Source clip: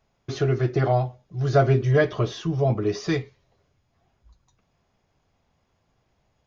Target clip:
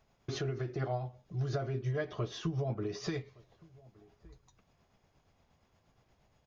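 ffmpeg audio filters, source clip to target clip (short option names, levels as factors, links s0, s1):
-filter_complex "[0:a]acompressor=threshold=0.0251:ratio=6,tremolo=f=8.5:d=0.4,asplit=2[s0][s1];[s1]adelay=1166,volume=0.0631,highshelf=f=4000:g=-26.2[s2];[s0][s2]amix=inputs=2:normalize=0,volume=1.12"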